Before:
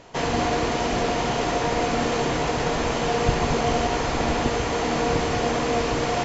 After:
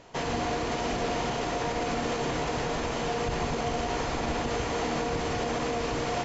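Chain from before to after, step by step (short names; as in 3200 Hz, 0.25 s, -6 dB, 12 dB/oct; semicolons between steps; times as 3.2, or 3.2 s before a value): limiter -16 dBFS, peak gain reduction 9 dB; gain -4.5 dB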